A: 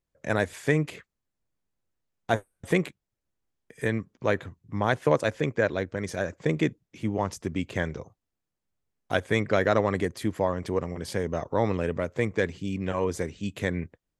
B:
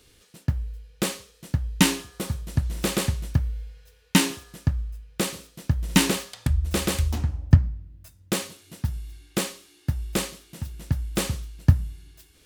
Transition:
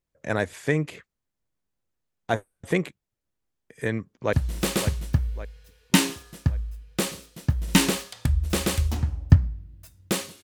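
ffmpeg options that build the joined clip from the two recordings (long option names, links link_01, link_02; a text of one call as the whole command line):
ffmpeg -i cue0.wav -i cue1.wav -filter_complex "[0:a]apad=whole_dur=10.43,atrim=end=10.43,atrim=end=4.332[link_01];[1:a]atrim=start=2.538:end=8.64[link_02];[link_01][link_02]acrossfade=duration=0.004:curve1=hsin:curve2=hsin,asplit=2[link_03][link_04];[link_04]afade=type=in:start_time=4:duration=0.01,afade=type=out:start_time=4.33:duration=0.01,aecho=0:1:560|1120|1680|2240|2800|3360:0.281838|0.155011|0.0852561|0.0468908|0.02579|0.0141845[link_05];[link_03][link_05]amix=inputs=2:normalize=0" out.wav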